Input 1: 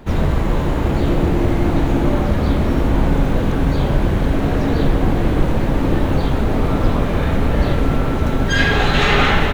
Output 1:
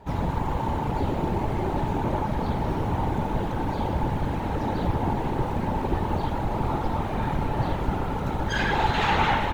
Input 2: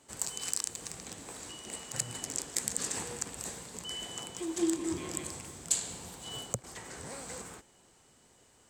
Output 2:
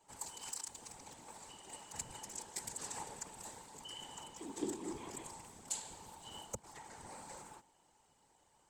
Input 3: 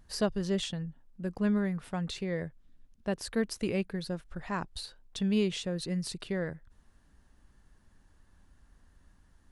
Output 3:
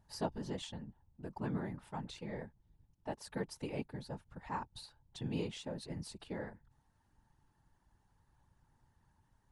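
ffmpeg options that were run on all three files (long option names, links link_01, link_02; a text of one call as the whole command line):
ffmpeg -i in.wav -af "afftfilt=real='hypot(re,im)*cos(2*PI*random(0))':imag='hypot(re,im)*sin(2*PI*random(1))':win_size=512:overlap=0.75,equalizer=frequency=880:width_type=o:width=0.35:gain=14,volume=-4.5dB" out.wav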